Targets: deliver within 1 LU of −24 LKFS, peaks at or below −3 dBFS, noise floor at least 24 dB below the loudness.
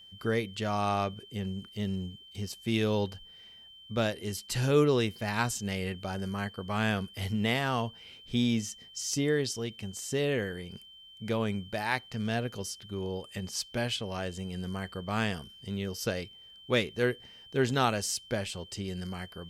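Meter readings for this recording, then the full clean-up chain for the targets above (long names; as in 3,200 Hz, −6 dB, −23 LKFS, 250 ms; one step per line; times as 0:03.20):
interfering tone 3,100 Hz; level of the tone −50 dBFS; integrated loudness −32.0 LKFS; sample peak −12.5 dBFS; target loudness −24.0 LKFS
→ notch filter 3,100 Hz, Q 30
level +8 dB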